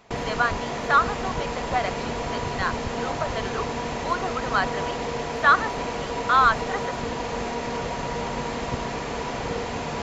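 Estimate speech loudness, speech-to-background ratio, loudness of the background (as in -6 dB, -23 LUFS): -25.0 LUFS, 4.5 dB, -29.5 LUFS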